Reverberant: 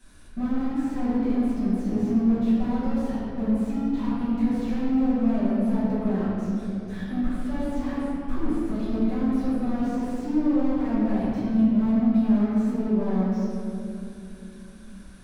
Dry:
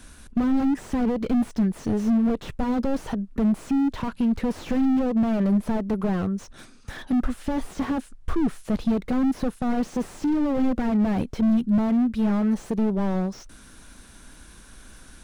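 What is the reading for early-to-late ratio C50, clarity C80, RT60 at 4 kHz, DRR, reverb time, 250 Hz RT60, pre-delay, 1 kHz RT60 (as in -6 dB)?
-3.5 dB, -1.5 dB, 1.6 s, -12.5 dB, 2.9 s, 4.4 s, 4 ms, 2.4 s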